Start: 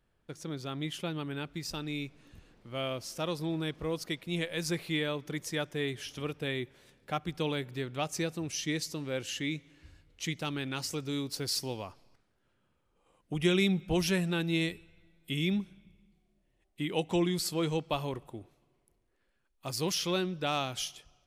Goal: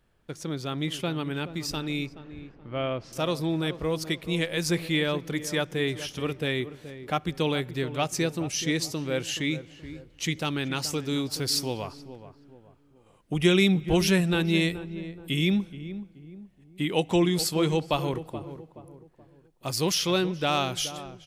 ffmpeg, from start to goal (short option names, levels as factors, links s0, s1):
-filter_complex "[0:a]asettb=1/sr,asplit=3[s0][s1][s2];[s0]atrim=end=2.064[s3];[s1]atrim=start=2.06:end=3.13,asetpts=PTS-STARTPTS,afade=t=in:d=0.004:c=qsin,afade=t=out:st=1.066:d=0.004:c=qsin,lowpass=2300[s4];[s2]atrim=start=3.126[s5];[s3][s4]acrossfade=d=0.004:c1=hsin:c2=qsin[s6];[s6][s5]acrossfade=d=0.004:c1=qsin:c2=hsin,asplit=2[s7][s8];[s8]adelay=426,lowpass=f=1100:p=1,volume=0.251,asplit=2[s9][s10];[s10]adelay=426,lowpass=f=1100:p=1,volume=0.41,asplit=2[s11][s12];[s12]adelay=426,lowpass=f=1100:p=1,volume=0.41,asplit=2[s13][s14];[s14]adelay=426,lowpass=f=1100:p=1,volume=0.41[s15];[s7][s9][s11][s13][s15]amix=inputs=5:normalize=0,volume=2"